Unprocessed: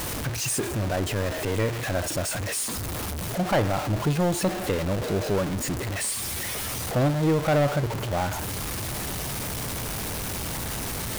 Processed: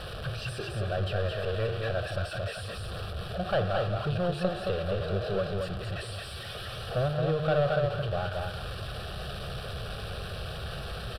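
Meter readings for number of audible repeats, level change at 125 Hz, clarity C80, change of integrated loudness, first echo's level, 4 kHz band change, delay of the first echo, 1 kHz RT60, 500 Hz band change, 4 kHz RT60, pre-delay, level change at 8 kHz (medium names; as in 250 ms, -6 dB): 1, -4.0 dB, no reverb, -5.0 dB, -3.5 dB, -4.5 dB, 222 ms, no reverb, -2.5 dB, no reverb, no reverb, -22.0 dB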